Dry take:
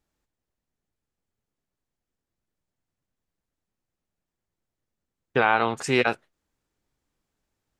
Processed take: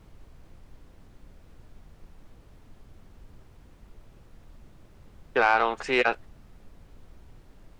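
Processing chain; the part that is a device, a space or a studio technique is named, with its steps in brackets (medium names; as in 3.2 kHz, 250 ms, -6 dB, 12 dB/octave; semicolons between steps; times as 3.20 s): aircraft cabin announcement (band-pass 410–3500 Hz; saturation -10.5 dBFS, distortion -18 dB; brown noise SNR 15 dB); trim +1.5 dB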